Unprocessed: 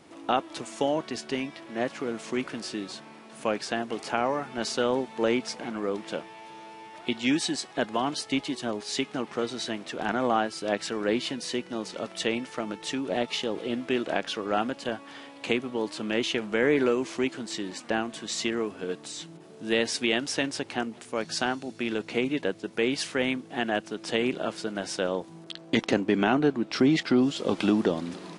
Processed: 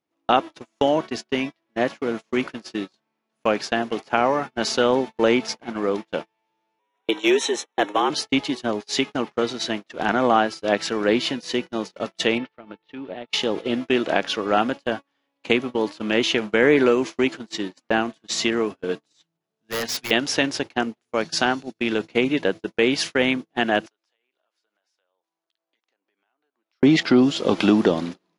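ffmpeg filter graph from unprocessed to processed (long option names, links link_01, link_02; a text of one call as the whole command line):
ffmpeg -i in.wav -filter_complex "[0:a]asettb=1/sr,asplit=3[link_01][link_02][link_03];[link_01]atrim=end=6.794[link_04];[link_02]atrim=start=6.79:end=8.1,asetpts=PTS-STARTPTS,afade=type=in:duration=0.004:curve=qsin,afade=type=out:start_time=1.306:duration=0.004:curve=qsin,afreqshift=89,asoftclip=type=hard:threshold=-18dB,asuperstop=centerf=4700:order=4:qfactor=3.2[link_05];[link_03]atrim=start=8.096[link_06];[link_04][link_05]acrossfade=duration=0.004:curve1=hsin:curve2=qsin[link_07];[link_07][link_06]acrossfade=duration=0.004:curve1=qsin:curve2=hsin,asettb=1/sr,asplit=3[link_08][link_09][link_10];[link_08]atrim=end=12.384[link_11];[link_09]atrim=start=12.38:end=13.3,asetpts=PTS-STARTPTS,afade=type=in:duration=0.004:curve=qsin,afade=type=out:start_time=0.916:duration=0.004:curve=qsin,acompressor=threshold=-30dB:ratio=10:attack=3.2:release=140:knee=1:detection=peak,lowpass=frequency=3800:width=0.5412,lowpass=frequency=3800:width=1.3066[link_12];[link_10]atrim=start=13.296[link_13];[link_11][link_12]acrossfade=duration=0.004:curve1=hsin:curve2=qsin[link_14];[link_14][link_13]acrossfade=duration=0.004:curve1=qsin:curve2=hsin,asettb=1/sr,asplit=3[link_15][link_16][link_17];[link_15]atrim=end=19.134[link_18];[link_16]atrim=start=19.13:end=20.11,asetpts=PTS-STARTPTS,afade=type=in:duration=0.004:curve=qsin,afade=type=out:start_time=0.976:duration=0.004:curve=qsin,equalizer=frequency=350:width=1.1:gain=-7.5,bandreject=frequency=60:width_type=h:width=6,bandreject=frequency=120:width_type=h:width=6,bandreject=frequency=180:width_type=h:width=6,bandreject=frequency=240:width_type=h:width=6,bandreject=frequency=300:width_type=h:width=6,bandreject=frequency=360:width_type=h:width=6,bandreject=frequency=420:width_type=h:width=6,aeval=exprs='0.0447*(abs(mod(val(0)/0.0447+3,4)-2)-1)':channel_layout=same[link_19];[link_17]atrim=start=20.106[link_20];[link_18][link_19]acrossfade=duration=0.004:curve1=hsin:curve2=qsin[link_21];[link_21][link_20]acrossfade=duration=0.004:curve1=qsin:curve2=hsin,asettb=1/sr,asplit=3[link_22][link_23][link_24];[link_22]atrim=end=23.864[link_25];[link_23]atrim=start=23.86:end=26.83,asetpts=PTS-STARTPTS,afade=type=in:duration=0.004:curve=qsin,afade=type=out:start_time=2.966:duration=0.004:curve=qsin,highpass=720,acompressor=threshold=-42dB:ratio=6:attack=3.2:release=140:knee=1:detection=peak[link_26];[link_24]atrim=start=26.826[link_27];[link_25][link_26]acrossfade=duration=0.004:curve1=hsin:curve2=qsin[link_28];[link_28][link_27]acrossfade=duration=0.004:curve1=qsin:curve2=hsin,lowshelf=frequency=350:gain=-2,agate=range=-37dB:threshold=-34dB:ratio=16:detection=peak,equalizer=frequency=8500:width_type=o:width=0.21:gain=-13.5,volume=7.5dB" out.wav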